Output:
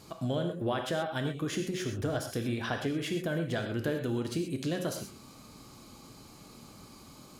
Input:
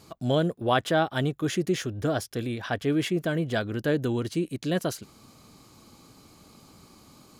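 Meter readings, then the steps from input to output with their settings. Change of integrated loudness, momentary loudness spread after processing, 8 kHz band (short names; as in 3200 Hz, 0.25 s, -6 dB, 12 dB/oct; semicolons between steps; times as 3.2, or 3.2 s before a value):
-5.5 dB, 19 LU, -3.0 dB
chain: compressor 6:1, threshold -30 dBFS, peak gain reduction 12 dB; non-linear reverb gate 0.15 s flat, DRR 3.5 dB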